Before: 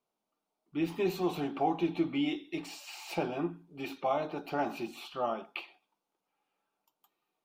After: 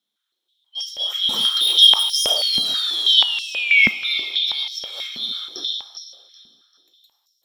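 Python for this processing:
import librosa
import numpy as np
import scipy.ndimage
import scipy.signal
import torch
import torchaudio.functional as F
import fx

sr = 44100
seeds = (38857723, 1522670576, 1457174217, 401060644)

p1 = fx.band_shuffle(x, sr, order='3412')
p2 = fx.leveller(p1, sr, passes=3, at=(1.29, 2.5))
p3 = fx.spec_paint(p2, sr, seeds[0], shape='fall', start_s=2.36, length_s=1.55, low_hz=2100.0, high_hz=4600.0, level_db=-30.0)
p4 = 10.0 ** (-28.0 / 20.0) * np.tanh(p3 / 10.0 ** (-28.0 / 20.0))
p5 = p3 + (p4 * librosa.db_to_amplitude(-8.5))
p6 = fx.echo_feedback(p5, sr, ms=391, feedback_pct=35, wet_db=-9.0)
p7 = fx.rev_plate(p6, sr, seeds[1], rt60_s=1.9, hf_ratio=1.0, predelay_ms=0, drr_db=5.0)
p8 = fx.filter_held_highpass(p7, sr, hz=6.2, low_hz=220.0, high_hz=5500.0)
y = p8 * librosa.db_to_amplitude(2.0)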